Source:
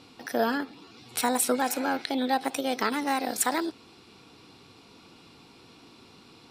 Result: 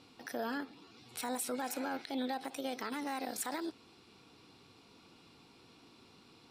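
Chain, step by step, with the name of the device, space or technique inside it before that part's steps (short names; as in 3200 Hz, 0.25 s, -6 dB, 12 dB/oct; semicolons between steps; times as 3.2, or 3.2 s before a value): clipper into limiter (hard clip -13.5 dBFS, distortion -34 dB; limiter -20 dBFS, peak gain reduction 6.5 dB); gain -7.5 dB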